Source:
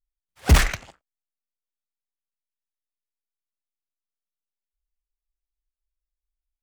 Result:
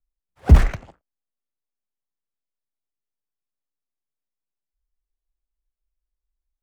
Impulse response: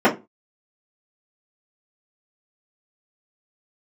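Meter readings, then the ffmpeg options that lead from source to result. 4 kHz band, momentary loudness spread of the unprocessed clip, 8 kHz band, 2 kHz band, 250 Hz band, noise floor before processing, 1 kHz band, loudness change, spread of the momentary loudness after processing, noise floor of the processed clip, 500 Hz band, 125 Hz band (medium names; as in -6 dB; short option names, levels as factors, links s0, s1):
-12.0 dB, 14 LU, -14.0 dB, -7.5 dB, +3.5 dB, under -85 dBFS, -2.5 dB, +4.0 dB, 14 LU, under -85 dBFS, +1.0 dB, +5.0 dB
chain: -filter_complex "[0:a]tiltshelf=f=1500:g=9,acrossover=split=220[s0][s1];[s1]acompressor=threshold=0.158:ratio=6[s2];[s0][s2]amix=inputs=2:normalize=0,volume=0.631"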